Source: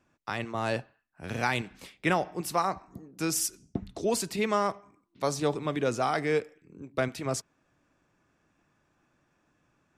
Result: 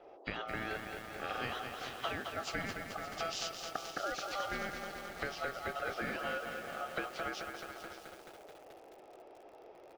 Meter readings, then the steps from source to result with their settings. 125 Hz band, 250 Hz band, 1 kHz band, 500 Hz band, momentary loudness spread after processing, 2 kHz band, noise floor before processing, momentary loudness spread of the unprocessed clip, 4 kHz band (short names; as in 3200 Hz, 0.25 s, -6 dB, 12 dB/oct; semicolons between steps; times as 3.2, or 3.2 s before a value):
-14.0 dB, -13.0 dB, -8.0 dB, -11.0 dB, 17 LU, -3.5 dB, -72 dBFS, 11 LU, -3.0 dB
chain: nonlinear frequency compression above 1900 Hz 1.5:1; Chebyshev band-pass 220–4300 Hz, order 2; compressor 10:1, threshold -41 dBFS, peak gain reduction 19 dB; ring modulator 990 Hz; echo 0.571 s -13.5 dB; band noise 320–810 Hz -63 dBFS; lo-fi delay 0.216 s, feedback 80%, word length 10-bit, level -5.5 dB; gain +7.5 dB